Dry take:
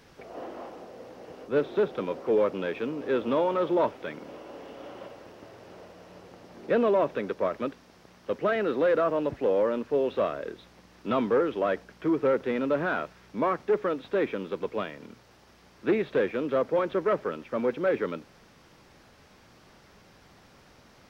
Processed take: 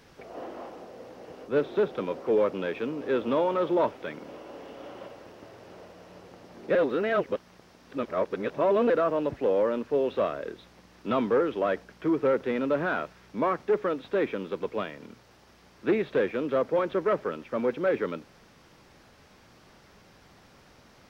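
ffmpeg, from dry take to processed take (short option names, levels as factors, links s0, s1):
-filter_complex "[0:a]asplit=3[s0][s1][s2];[s0]atrim=end=6.752[s3];[s1]atrim=start=6.748:end=8.902,asetpts=PTS-STARTPTS,areverse[s4];[s2]atrim=start=8.898[s5];[s3][s4]acrossfade=d=0.004:c1=hsin:c2=hsin[s6];[s6][s5]acrossfade=d=0.004:c1=hsin:c2=hsin"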